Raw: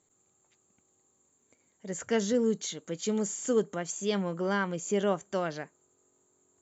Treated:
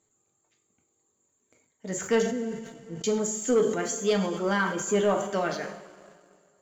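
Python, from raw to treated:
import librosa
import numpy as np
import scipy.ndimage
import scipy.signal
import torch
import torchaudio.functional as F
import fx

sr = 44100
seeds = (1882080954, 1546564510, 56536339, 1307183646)

y = fx.dereverb_blind(x, sr, rt60_s=1.1)
y = fx.bandpass_q(y, sr, hz=130.0, q=1.6, at=(2.22, 3.04))
y = fx.rev_double_slope(y, sr, seeds[0], early_s=0.45, late_s=2.8, knee_db=-15, drr_db=2.5)
y = fx.leveller(y, sr, passes=1)
y = fx.sustainer(y, sr, db_per_s=69.0)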